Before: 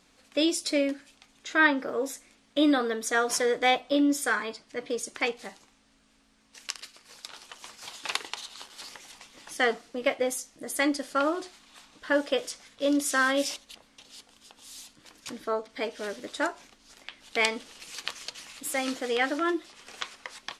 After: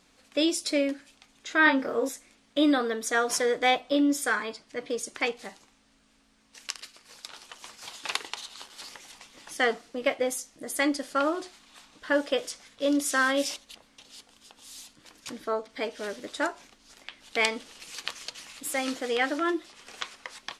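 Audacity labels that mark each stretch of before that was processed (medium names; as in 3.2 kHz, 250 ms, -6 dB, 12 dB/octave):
1.640000	2.090000	doubling 26 ms -3 dB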